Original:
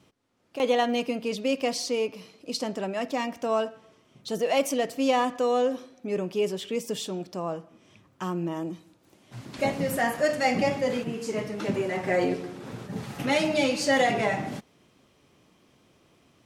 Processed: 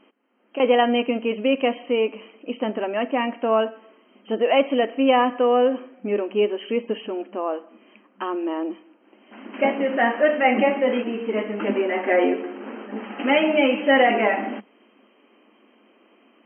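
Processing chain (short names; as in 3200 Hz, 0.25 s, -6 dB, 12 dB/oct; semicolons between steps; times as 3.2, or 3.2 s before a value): FFT band-pass 200–3200 Hz; gain +6 dB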